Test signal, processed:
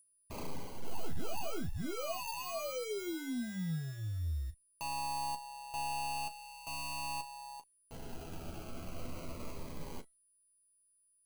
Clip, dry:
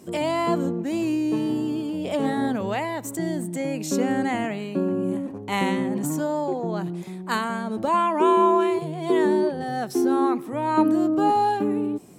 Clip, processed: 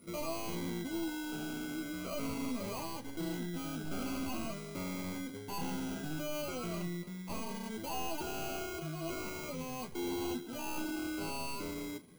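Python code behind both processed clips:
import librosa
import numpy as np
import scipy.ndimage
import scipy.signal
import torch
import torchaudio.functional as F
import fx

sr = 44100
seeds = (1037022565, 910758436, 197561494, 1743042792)

p1 = fx.tracing_dist(x, sr, depth_ms=0.12)
p2 = fx.high_shelf(p1, sr, hz=4300.0, db=-9.5)
p3 = fx.rider(p2, sr, range_db=4, speed_s=2.0)
p4 = p2 + F.gain(torch.from_numpy(p3), -1.0).numpy()
p5 = fx.sample_hold(p4, sr, seeds[0], rate_hz=1800.0, jitter_pct=0)
p6 = np.clip(p5, -10.0 ** (-20.0 / 20.0), 10.0 ** (-20.0 / 20.0))
p7 = p6 + 10.0 ** (-45.0 / 20.0) * np.sin(2.0 * np.pi * 9800.0 * np.arange(len(p6)) / sr)
p8 = fx.comb_fb(p7, sr, f0_hz=660.0, decay_s=0.21, harmonics='all', damping=0.0, mix_pct=60)
p9 = fx.quant_float(p8, sr, bits=4)
p10 = fx.room_early_taps(p9, sr, ms=(12, 37), db=(-6.5, -14.0))
p11 = fx.notch_cascade(p10, sr, direction='falling', hz=0.43)
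y = F.gain(torch.from_numpy(p11), -8.5).numpy()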